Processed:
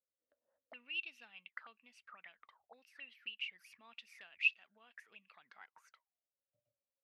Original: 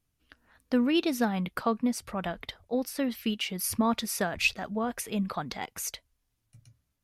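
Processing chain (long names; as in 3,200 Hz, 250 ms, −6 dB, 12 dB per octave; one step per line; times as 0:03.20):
envelope filter 530–2,700 Hz, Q 17, up, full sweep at −27.5 dBFS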